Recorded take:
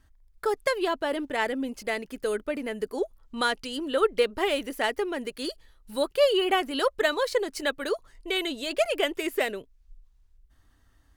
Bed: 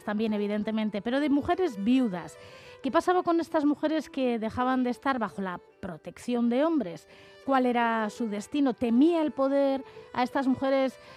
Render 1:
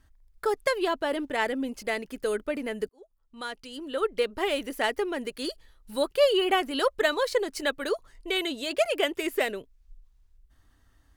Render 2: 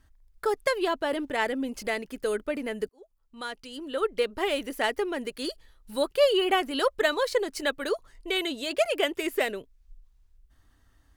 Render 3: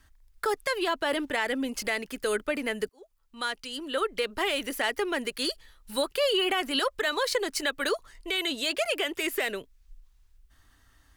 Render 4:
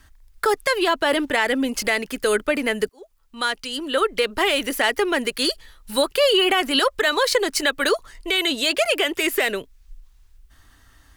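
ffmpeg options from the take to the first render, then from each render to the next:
ffmpeg -i in.wav -filter_complex "[0:a]asettb=1/sr,asplit=3[link_01][link_02][link_03];[link_01]atrim=end=8.414[link_04];[link_02]atrim=start=8.41:end=9.2,asetpts=PTS-STARTPTS,afade=type=in:duration=0.004:curve=qsin,afade=type=out:start_time=0.786:duration=0.004:curve=qsin,highpass=44[link_05];[link_03]atrim=start=9.196[link_06];[link_04][link_05]acrossfade=duration=0.004:curve1=hsin:curve2=qsin[link_07];[link_07][link_06]acrossfade=duration=0.004:curve1=qsin:curve2=hsin,asplit=2[link_08][link_09];[link_08]atrim=end=2.89,asetpts=PTS-STARTPTS,afade=type=out:start_time=2.886:duration=0.004:curve=hsin[link_10];[link_09]atrim=start=2.89,asetpts=PTS-STARTPTS,afade=type=in:duration=1.89[link_11];[link_10][link_11]concat=n=2:v=0:a=1" out.wav
ffmpeg -i in.wav -filter_complex "[0:a]asettb=1/sr,asplit=3[link_01][link_02][link_03];[link_01]atrim=end=1.134[link_04];[link_02]atrim=start=1.13:end=2.02,asetpts=PTS-STARTPTS,afade=type=in:duration=0.004:curve=qsin,afade=type=out:start_time=0.886:duration=0.004:curve=qsin,acompressor=mode=upward:threshold=-32dB:ratio=2.5:attack=3.2:release=140:knee=2.83:detection=peak[link_05];[link_03]atrim=start=2.016[link_06];[link_04][link_05]acrossfade=duration=0.004:curve1=hsin:curve2=qsin[link_07];[link_07][link_06]acrossfade=duration=0.004:curve1=qsin:curve2=hsin" out.wav
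ffmpeg -i in.wav -filter_complex "[0:a]acrossover=split=330|1000[link_01][link_02][link_03];[link_03]acontrast=71[link_04];[link_01][link_02][link_04]amix=inputs=3:normalize=0,alimiter=limit=-17.5dB:level=0:latency=1:release=81" out.wav
ffmpeg -i in.wav -af "volume=8dB" out.wav

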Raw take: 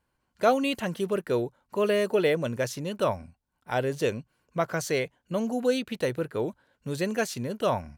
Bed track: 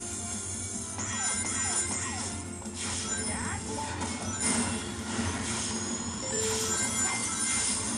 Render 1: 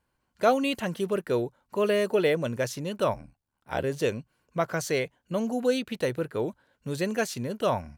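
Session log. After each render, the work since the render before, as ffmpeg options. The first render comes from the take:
ffmpeg -i in.wav -filter_complex "[0:a]asettb=1/sr,asplit=3[link_01][link_02][link_03];[link_01]atrim=end=3.134[link_04];[link_02]atrim=start=3.13:end=3.84,asetpts=PTS-STARTPTS,afade=type=in:duration=0.004:curve=qsin,afade=type=out:start_time=0.706:duration=0.004:curve=qsin,aeval=exprs='val(0)*sin(2*PI*37*n/s)':channel_layout=same[link_05];[link_03]atrim=start=3.836[link_06];[link_04][link_05]acrossfade=duration=0.004:curve1=hsin:curve2=qsin[link_07];[link_07][link_06]acrossfade=duration=0.004:curve1=qsin:curve2=hsin" out.wav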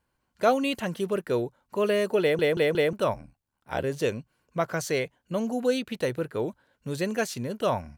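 ffmpeg -i in.wav -filter_complex "[0:a]asplit=5[link_01][link_02][link_03][link_04][link_05];[link_01]atrim=end=2.392[link_06];[link_02]atrim=start=2.208:end=2.392[link_07];[link_03]atrim=start=2.208:end=2.392[link_08];[link_04]atrim=start=2.208:end=2.392[link_09];[link_05]atrim=start=2.928[link_10];[link_06][link_07]acrossfade=duration=0.004:curve1=hsin:curve2=hsin[link_11];[link_11][link_08]acrossfade=duration=0.004:curve1=hsin:curve2=hsin[link_12];[link_12][link_09]acrossfade=duration=0.004:curve1=hsin:curve2=hsin[link_13];[link_13][link_10]acrossfade=duration=0.004:curve1=hsin:curve2=hsin" out.wav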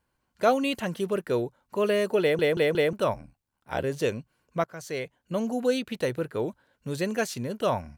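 ffmpeg -i in.wav -filter_complex "[0:a]asplit=2[link_01][link_02];[link_01]atrim=end=4.64,asetpts=PTS-STARTPTS,afade=type=out:start_time=4.636:duration=0.004:curve=hsin:silence=0.11885[link_03];[link_02]atrim=start=4.64,asetpts=PTS-STARTPTS,afade=type=in:duration=0.68:silence=0.11885[link_04];[link_03][link_04]concat=n=2:v=0:a=1" out.wav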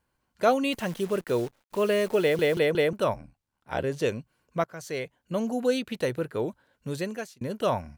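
ffmpeg -i in.wav -filter_complex "[0:a]asettb=1/sr,asplit=3[link_01][link_02][link_03];[link_01]atrim=end=0.724[link_04];[link_02]atrim=start=0.72:end=2.59,asetpts=PTS-STARTPTS,afade=type=in:duration=0.004:curve=qsin,afade=type=out:start_time=1.866:duration=0.004:curve=qsin,acrusher=bits=8:dc=4:mix=0:aa=0.000001[link_05];[link_03]atrim=start=2.586[link_06];[link_04][link_05]acrossfade=duration=0.004:curve1=hsin:curve2=qsin[link_07];[link_07][link_06]acrossfade=duration=0.004:curve1=qsin:curve2=hsin,asettb=1/sr,asplit=3[link_08][link_09][link_10];[link_08]atrim=end=3.164[link_11];[link_09]atrim=start=3.16:end=4.06,asetpts=PTS-STARTPTS,afade=type=in:duration=0.004:curve=qsin,afade=type=out:start_time=0.896:duration=0.004:curve=qsin,highshelf=frequency=11000:gain=-8.5[link_12];[link_10]atrim=start=4.056[link_13];[link_11][link_12]acrossfade=duration=0.004:curve1=hsin:curve2=qsin[link_14];[link_14][link_13]acrossfade=duration=0.004:curve1=qsin:curve2=hsin,asplit=2[link_15][link_16];[link_15]atrim=end=7.41,asetpts=PTS-STARTPTS,afade=type=out:start_time=6.89:duration=0.52[link_17];[link_16]atrim=start=7.41,asetpts=PTS-STARTPTS,afade=type=in:duration=0.004:curve=hsin[link_18];[link_17][link_18]concat=n=2:v=0:a=1" out.wav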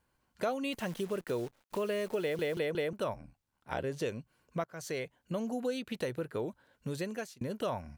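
ffmpeg -i in.wav -af "acompressor=threshold=-35dB:ratio=2.5" out.wav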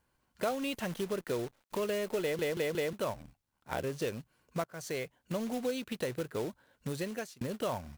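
ffmpeg -i in.wav -af "acrusher=bits=3:mode=log:mix=0:aa=0.000001" out.wav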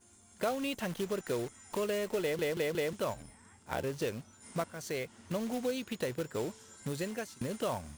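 ffmpeg -i in.wav -i bed.wav -filter_complex "[1:a]volume=-25.5dB[link_01];[0:a][link_01]amix=inputs=2:normalize=0" out.wav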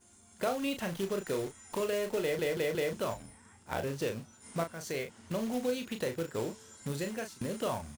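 ffmpeg -i in.wav -filter_complex "[0:a]asplit=2[link_01][link_02];[link_02]adelay=36,volume=-7dB[link_03];[link_01][link_03]amix=inputs=2:normalize=0" out.wav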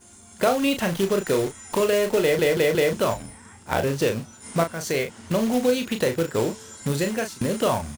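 ffmpeg -i in.wav -af "volume=11.5dB" out.wav

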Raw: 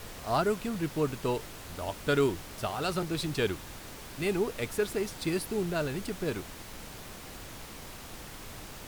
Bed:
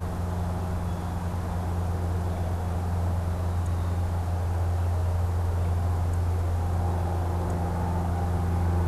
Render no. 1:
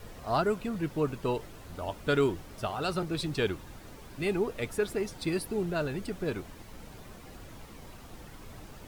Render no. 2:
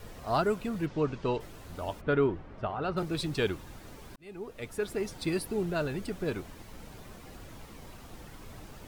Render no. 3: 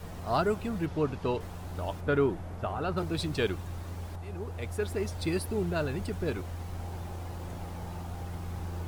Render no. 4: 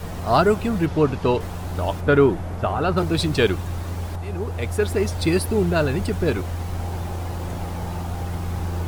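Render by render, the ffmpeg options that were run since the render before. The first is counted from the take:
ffmpeg -i in.wav -af "afftdn=noise_reduction=9:noise_floor=-45" out.wav
ffmpeg -i in.wav -filter_complex "[0:a]asplit=3[link_01][link_02][link_03];[link_01]afade=type=out:start_time=0.85:duration=0.02[link_04];[link_02]lowpass=frequency=6200:width=0.5412,lowpass=frequency=6200:width=1.3066,afade=type=in:start_time=0.85:duration=0.02,afade=type=out:start_time=1.39:duration=0.02[link_05];[link_03]afade=type=in:start_time=1.39:duration=0.02[link_06];[link_04][link_05][link_06]amix=inputs=3:normalize=0,asplit=3[link_07][link_08][link_09];[link_07]afade=type=out:start_time=2:duration=0.02[link_10];[link_08]lowpass=1900,afade=type=in:start_time=2:duration=0.02,afade=type=out:start_time=2.96:duration=0.02[link_11];[link_09]afade=type=in:start_time=2.96:duration=0.02[link_12];[link_10][link_11][link_12]amix=inputs=3:normalize=0,asplit=2[link_13][link_14];[link_13]atrim=end=4.16,asetpts=PTS-STARTPTS,afade=type=out:start_time=4.156:duration=0.004:curve=hsin[link_15];[link_14]atrim=start=4.16,asetpts=PTS-STARTPTS,afade=type=in:duration=0.94[link_16];[link_15][link_16]concat=n=2:v=0:a=1" out.wav
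ffmpeg -i in.wav -i bed.wav -filter_complex "[1:a]volume=-12.5dB[link_01];[0:a][link_01]amix=inputs=2:normalize=0" out.wav
ffmpeg -i in.wav -af "volume=10.5dB" out.wav

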